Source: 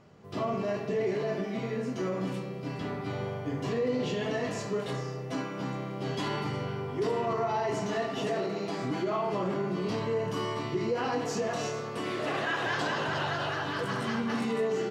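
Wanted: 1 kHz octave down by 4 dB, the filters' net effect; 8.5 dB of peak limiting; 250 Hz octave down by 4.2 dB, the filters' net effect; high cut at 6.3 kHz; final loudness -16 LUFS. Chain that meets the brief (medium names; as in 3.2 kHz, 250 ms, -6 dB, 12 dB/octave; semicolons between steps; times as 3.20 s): low-pass 6.3 kHz; peaking EQ 250 Hz -5.5 dB; peaking EQ 1 kHz -5 dB; trim +22 dB; peak limiter -8 dBFS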